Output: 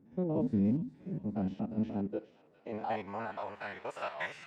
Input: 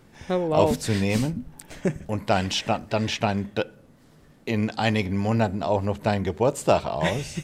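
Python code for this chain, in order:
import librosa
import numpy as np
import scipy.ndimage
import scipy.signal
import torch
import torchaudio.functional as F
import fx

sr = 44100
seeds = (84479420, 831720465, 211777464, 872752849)

y = fx.spec_steps(x, sr, hold_ms=100)
y = fx.filter_sweep_bandpass(y, sr, from_hz=230.0, to_hz=1700.0, start_s=3.0, end_s=5.91, q=2.1)
y = fx.echo_wet_highpass(y, sr, ms=681, feedback_pct=71, hz=1700.0, wet_db=-10.5)
y = fx.stretch_vocoder(y, sr, factor=0.6)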